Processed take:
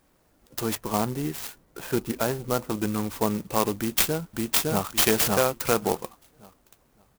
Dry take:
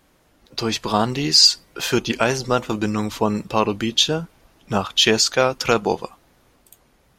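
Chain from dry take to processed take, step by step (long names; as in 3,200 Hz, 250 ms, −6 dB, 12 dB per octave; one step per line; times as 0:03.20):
0:00.75–0:02.70: high-frequency loss of the air 460 metres
0:03.77–0:04.85: delay throw 560 ms, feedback 25%, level −0.5 dB
converter with an unsteady clock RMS 0.079 ms
level −5 dB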